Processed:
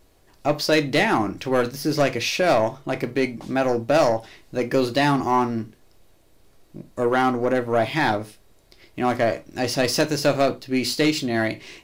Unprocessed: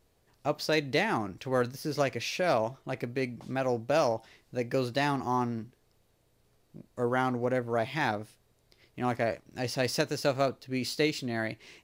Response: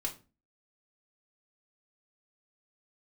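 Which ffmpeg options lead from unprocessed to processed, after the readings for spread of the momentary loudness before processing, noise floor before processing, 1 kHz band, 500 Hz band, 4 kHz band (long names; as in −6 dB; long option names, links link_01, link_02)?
9 LU, −69 dBFS, +8.5 dB, +8.0 dB, +9.0 dB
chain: -filter_complex "[0:a]asoftclip=type=tanh:threshold=-21dB,asplit=2[link_01][link_02];[1:a]atrim=start_sample=2205,afade=type=out:start_time=0.15:duration=0.01,atrim=end_sample=7056[link_03];[link_02][link_03]afir=irnorm=-1:irlink=0,volume=-3.5dB[link_04];[link_01][link_04]amix=inputs=2:normalize=0,volume=6dB"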